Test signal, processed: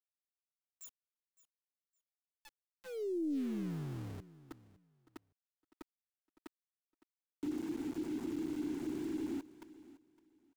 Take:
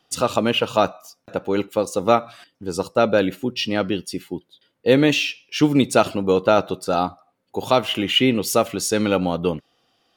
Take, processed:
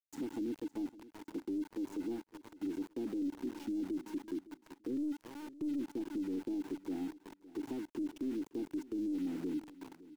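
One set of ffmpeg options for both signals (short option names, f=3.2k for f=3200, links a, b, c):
-filter_complex "[0:a]asplit=3[a][b][c];[a]bandpass=f=300:t=q:w=8,volume=0dB[d];[b]bandpass=f=870:t=q:w=8,volume=-6dB[e];[c]bandpass=f=2.24k:t=q:w=8,volume=-9dB[f];[d][e][f]amix=inputs=3:normalize=0,aeval=exprs='(tanh(6.31*val(0)+0.35)-tanh(0.35))/6.31':c=same,highshelf=f=7.4k:g=-4.5,acompressor=threshold=-38dB:ratio=4,firequalizer=gain_entry='entry(190,0);entry(330,8);entry(920,-18);entry(1800,-27);entry(7100,7);entry(16000,-24)':delay=0.05:min_phase=1,asplit=2[g][h];[h]adelay=374,lowpass=f=4.4k:p=1,volume=-17dB,asplit=2[i][j];[j]adelay=374,lowpass=f=4.4k:p=1,volume=0.49,asplit=2[k][l];[l]adelay=374,lowpass=f=4.4k:p=1,volume=0.49,asplit=2[m][n];[n]adelay=374,lowpass=f=4.4k:p=1,volume=0.49[o];[i][k][m][o]amix=inputs=4:normalize=0[p];[g][p]amix=inputs=2:normalize=0,aeval=exprs='val(0)*gte(abs(val(0)),0.00447)':c=same,alimiter=level_in=8dB:limit=-24dB:level=0:latency=1:release=12,volume=-8dB,asplit=2[q][r];[r]aecho=0:1:561|1122:0.112|0.0236[s];[q][s]amix=inputs=2:normalize=0,acrossover=split=390[t][u];[u]acompressor=threshold=-47dB:ratio=6[v];[t][v]amix=inputs=2:normalize=0,volume=1.5dB"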